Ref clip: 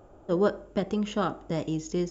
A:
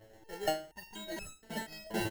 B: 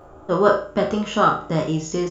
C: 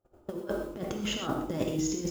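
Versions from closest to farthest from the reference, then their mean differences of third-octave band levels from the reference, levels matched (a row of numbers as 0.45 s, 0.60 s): B, C, A; 3.5 dB, 10.0 dB, 13.5 dB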